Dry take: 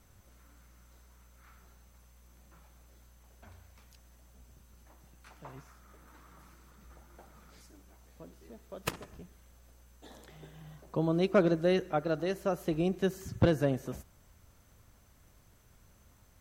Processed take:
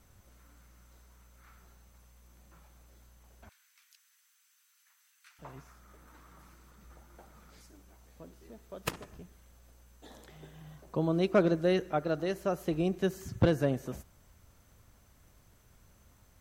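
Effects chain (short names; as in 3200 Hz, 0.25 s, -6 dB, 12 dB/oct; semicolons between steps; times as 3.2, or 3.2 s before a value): 3.49–5.39 inverse Chebyshev high-pass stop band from 250 Hz, stop band 80 dB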